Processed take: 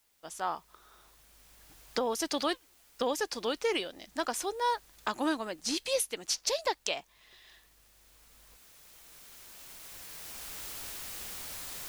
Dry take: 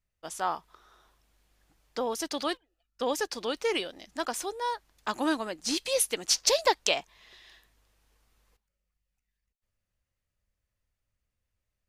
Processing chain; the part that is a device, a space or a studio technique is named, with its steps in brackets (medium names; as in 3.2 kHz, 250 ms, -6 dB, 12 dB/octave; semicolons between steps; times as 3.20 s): cheap recorder with automatic gain (white noise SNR 31 dB; recorder AGC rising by 8.1 dB/s); trim -7 dB